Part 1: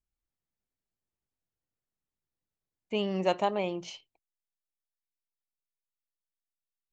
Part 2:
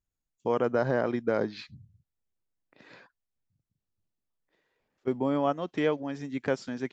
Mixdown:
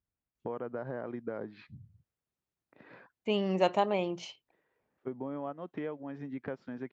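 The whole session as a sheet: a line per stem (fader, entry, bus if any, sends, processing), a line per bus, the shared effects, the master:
+0.5 dB, 0.35 s, no send, treble shelf 5.1 kHz -5.5 dB
0.0 dB, 0.00 s, no send, low-pass 1.9 kHz 12 dB/octave; compression 3:1, threshold -38 dBFS, peak gain reduction 13 dB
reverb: none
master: high-pass 53 Hz

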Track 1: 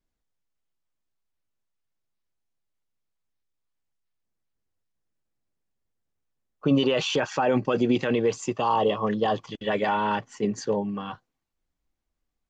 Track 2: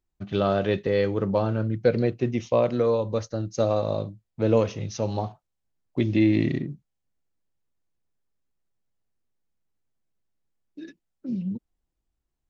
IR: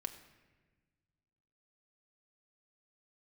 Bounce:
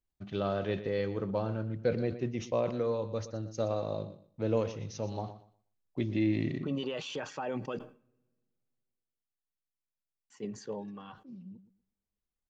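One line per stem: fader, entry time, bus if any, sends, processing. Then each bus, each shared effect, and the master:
-14.5 dB, 0.00 s, muted 7.79–10.30 s, send -14 dB, no echo send, none
8.75 s -9 dB -> 9.10 s -18.5 dB, 0.00 s, no send, echo send -14 dB, none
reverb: on, RT60 1.3 s, pre-delay 5 ms
echo: feedback delay 120 ms, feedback 22%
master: decay stretcher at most 140 dB/s

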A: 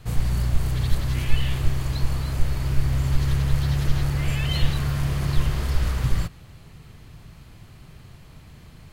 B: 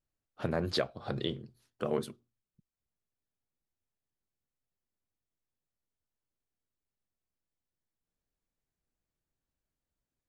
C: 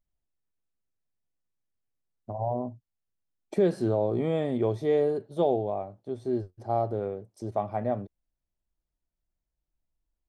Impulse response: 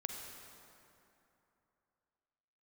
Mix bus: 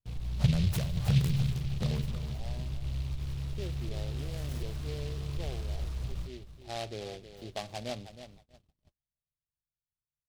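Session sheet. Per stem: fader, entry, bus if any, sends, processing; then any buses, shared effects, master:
-15.0 dB, 0.00 s, no send, echo send -14.5 dB, low-pass 1.7 kHz 6 dB/octave; peak limiter -14.5 dBFS, peak gain reduction 8.5 dB
+2.5 dB, 0.00 s, send -7 dB, echo send -7.5 dB, compression 4:1, threshold -43 dBFS, peak gain reduction 15 dB; resonant low shelf 210 Hz +13 dB, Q 3; level-controlled noise filter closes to 510 Hz, open at -31 dBFS
6.27 s -19.5 dB -> 6.88 s -9.5 dB, 0.00 s, no send, echo send -11.5 dB, none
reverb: on, RT60 2.9 s, pre-delay 38 ms
echo: feedback delay 317 ms, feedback 29%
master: peaking EQ 60 Hz +5 dB 0.79 oct; gate -54 dBFS, range -32 dB; delay time shaken by noise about 3.2 kHz, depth 0.12 ms

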